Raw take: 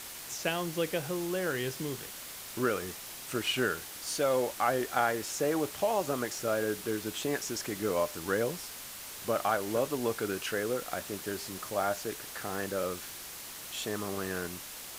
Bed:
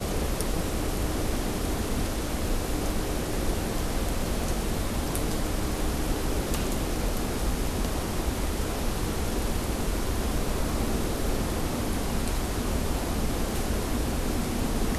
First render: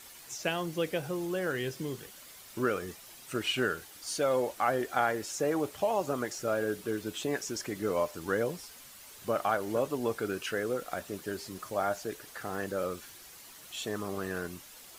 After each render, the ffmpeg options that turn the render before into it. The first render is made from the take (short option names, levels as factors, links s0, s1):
-af "afftdn=nr=9:nf=-44"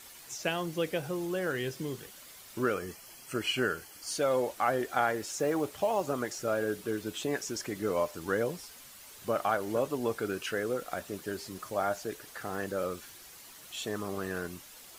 -filter_complex "[0:a]asettb=1/sr,asplit=3[s0][s1][s2];[s0]atrim=end=2.744[s3];[s1]atrim=start=2.74:end=4.11,asetpts=PTS-STARTPTS,afade=t=in:d=0.004:c=qsin,afade=t=out:st=1.366:d=0.004:c=qsin,asuperstop=centerf=3700:order=8:qfactor=6.6[s4];[s2]atrim=start=4.106[s5];[s3][s4]acrossfade=d=0.004:c1=hsin:c2=qsin[s6];[s6][s5]acrossfade=d=0.004:c1=qsin:c2=hsin,asettb=1/sr,asplit=3[s7][s8][s9];[s7]atrim=end=5.194[s10];[s8]atrim=start=5.19:end=6.11,asetpts=PTS-STARTPTS,afade=t=in:d=0.004:c=qsin,afade=t=out:st=0.916:d=0.004:c=qsin,acrusher=bits=8:mode=log:mix=0:aa=0.000001[s11];[s9]atrim=start=6.106[s12];[s10][s11]acrossfade=d=0.004:c1=hsin:c2=qsin[s13];[s13][s12]acrossfade=d=0.004:c1=qsin:c2=hsin"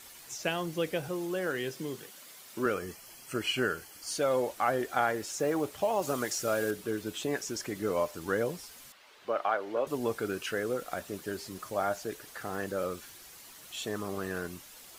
-filter_complex "[0:a]asettb=1/sr,asplit=3[s0][s1][s2];[s0]atrim=end=1.084[s3];[s1]atrim=start=1.08:end=2.66,asetpts=PTS-STARTPTS,afade=t=in:d=0.004:c=qsin,afade=t=out:st=1.576:d=0.004:c=qsin,highpass=160[s4];[s2]atrim=start=2.656[s5];[s3][s4]acrossfade=d=0.004:c1=hsin:c2=qsin[s6];[s6][s5]acrossfade=d=0.004:c1=qsin:c2=hsin,asettb=1/sr,asplit=3[s7][s8][s9];[s7]atrim=end=6.024[s10];[s8]atrim=start=6.02:end=6.71,asetpts=PTS-STARTPTS,afade=t=in:d=0.004:c=qsin,afade=t=out:st=0.686:d=0.004:c=qsin,highshelf=f=2600:g=8[s11];[s9]atrim=start=6.706[s12];[s10][s11]acrossfade=d=0.004:c1=hsin:c2=qsin[s13];[s13][s12]acrossfade=d=0.004:c1=qsin:c2=hsin,asettb=1/sr,asplit=3[s14][s15][s16];[s14]atrim=end=8.924[s17];[s15]atrim=start=8.92:end=9.87,asetpts=PTS-STARTPTS,afade=t=in:d=0.004:c=qsin,afade=t=out:st=0.946:d=0.004:c=qsin,acrossover=split=310 4300:gain=0.126 1 0.1[s18][s19][s20];[s18][s19][s20]amix=inputs=3:normalize=0[s21];[s16]atrim=start=9.866[s22];[s17][s21]acrossfade=d=0.004:c1=hsin:c2=qsin[s23];[s23][s22]acrossfade=d=0.004:c1=qsin:c2=hsin"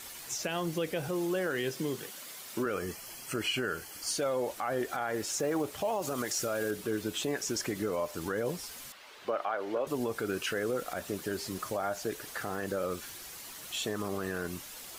-filter_complex "[0:a]asplit=2[s0][s1];[s1]acompressor=threshold=0.0141:ratio=6,volume=0.841[s2];[s0][s2]amix=inputs=2:normalize=0,alimiter=limit=0.075:level=0:latency=1:release=61"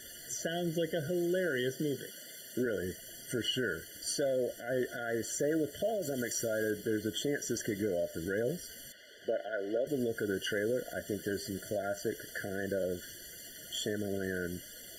-af "afftfilt=real='re*eq(mod(floor(b*sr/1024/700),2),0)':imag='im*eq(mod(floor(b*sr/1024/700),2),0)':win_size=1024:overlap=0.75"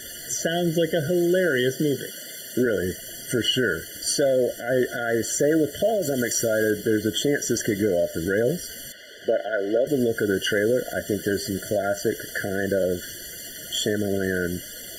-af "volume=3.55"